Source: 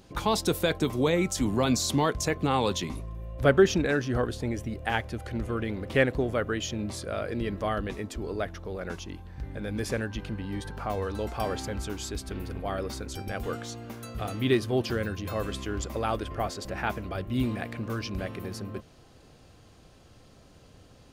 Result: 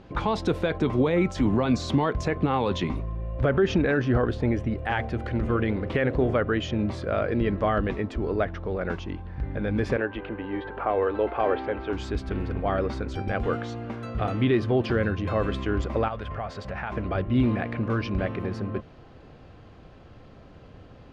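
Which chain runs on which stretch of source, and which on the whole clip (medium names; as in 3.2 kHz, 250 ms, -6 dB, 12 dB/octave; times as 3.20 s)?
4.76–6.36 s: treble shelf 6.4 kHz +6 dB + de-hum 45.59 Hz, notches 17
9.96–11.93 s: low-pass 3.4 kHz 24 dB/octave + resonant low shelf 250 Hz -11 dB, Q 1.5
16.08–16.92 s: high-pass 49 Hz + peaking EQ 320 Hz -14 dB 0.66 oct + compression 4:1, threshold -35 dBFS
whole clip: peak limiter -19.5 dBFS; low-pass 2.4 kHz 12 dB/octave; trim +6.5 dB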